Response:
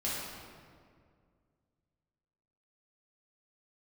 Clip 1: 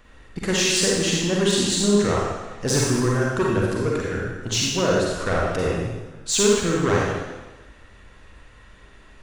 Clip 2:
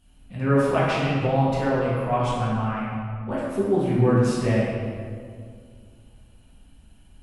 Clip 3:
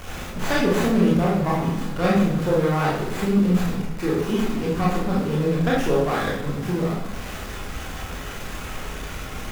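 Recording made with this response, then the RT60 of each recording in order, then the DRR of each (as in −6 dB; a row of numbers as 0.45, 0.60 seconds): 2; 1.2, 2.1, 0.80 seconds; −4.0, −8.5, −5.5 decibels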